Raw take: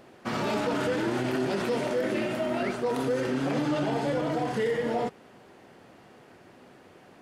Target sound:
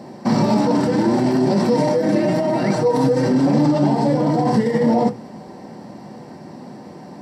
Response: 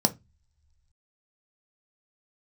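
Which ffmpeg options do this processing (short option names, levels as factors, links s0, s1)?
-filter_complex "[0:a]asettb=1/sr,asplit=3[s0][s1][s2];[s0]atrim=end=1.744[s3];[s1]atrim=start=1.74:end=3.28,asetpts=PTS-STARTPTS,afade=t=in:d=0.004:c=qsin,afade=t=out:st=1.536:d=0.004:c=qsin,aecho=1:1:6.4:0.98,atrim=end_sample=67914[s4];[s2]atrim=start=3.276[s5];[s3][s4]acrossfade=d=0.004:c1=hsin:c2=qsin[s6];[s6][s5]acrossfade=d=0.004:c1=qsin:c2=hsin,alimiter=level_in=1.19:limit=0.0631:level=0:latency=1:release=18,volume=0.841[s7];[1:a]atrim=start_sample=2205[s8];[s7][s8]afir=irnorm=-1:irlink=0"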